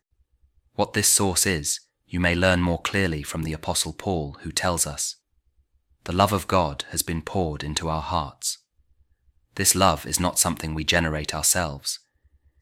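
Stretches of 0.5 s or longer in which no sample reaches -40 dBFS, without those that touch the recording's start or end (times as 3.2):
5.13–6.06
8.55–9.57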